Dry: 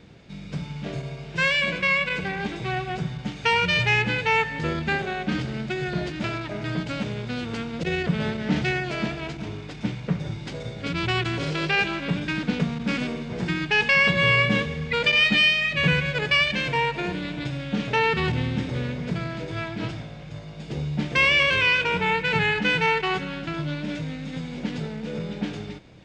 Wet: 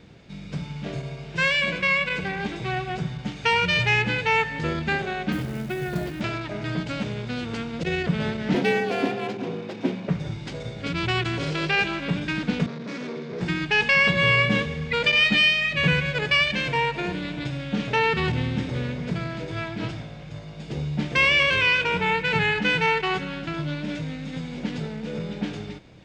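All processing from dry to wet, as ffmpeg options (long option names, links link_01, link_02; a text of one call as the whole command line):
ffmpeg -i in.wav -filter_complex "[0:a]asettb=1/sr,asplit=3[link_01][link_02][link_03];[link_01]atrim=end=5.324[link_04];[link_02]atrim=start=5.32:end=6.21,asetpts=PTS-STARTPTS,afade=type=in:duration=0.004:curve=qsin,afade=type=out:start_time=0.886:duration=0.004:curve=qsin,aemphasis=mode=reproduction:type=75kf,acrusher=bits=5:mode=log:mix=0:aa=0.000001[link_05];[link_03]atrim=start=6.206[link_06];[link_04][link_05]acrossfade=duration=0.004:curve1=hsin:curve2=qsin[link_07];[link_07][link_06]acrossfade=duration=0.004:curve1=qsin:curve2=hsin,asettb=1/sr,asplit=3[link_08][link_09][link_10];[link_08]atrim=end=8.544[link_11];[link_09]atrim=start=8.54:end=10.09,asetpts=PTS-STARTPTS,afade=type=in:duration=0.004:curve=qsin,afade=type=out:start_time=1.546:duration=0.004:curve=qsin,equalizer=frequency=450:width_type=o:width=1.6:gain=7,adynamicsmooth=sensitivity=8:basefreq=5900,afreqshift=62[link_12];[link_10]atrim=start=10.086[link_13];[link_11][link_12]acrossfade=duration=0.004:curve1=hsin:curve2=qsin[link_14];[link_14][link_13]acrossfade=duration=0.004:curve1=qsin:curve2=hsin,asettb=1/sr,asplit=3[link_15][link_16][link_17];[link_15]atrim=end=12.664[link_18];[link_16]atrim=start=12.66:end=13.41,asetpts=PTS-STARTPTS,afade=type=in:duration=0.004:curve=qsin,afade=type=out:start_time=0.746:duration=0.004:curve=qsin,asoftclip=type=hard:threshold=-30.5dB,highpass=frequency=140:width=0.5412,highpass=frequency=140:width=1.3066,equalizer=frequency=220:width_type=q:width=4:gain=-3,equalizer=frequency=420:width_type=q:width=4:gain=9,equalizer=frequency=790:width_type=q:width=4:gain=-6,equalizer=frequency=2900:width_type=q:width=4:gain=-7,lowpass=frequency=5900:width=0.5412,lowpass=frequency=5900:width=1.3066[link_19];[link_17]atrim=start=13.406[link_20];[link_18][link_19]acrossfade=duration=0.004:curve1=hsin:curve2=qsin[link_21];[link_21][link_20]acrossfade=duration=0.004:curve1=qsin:curve2=hsin" out.wav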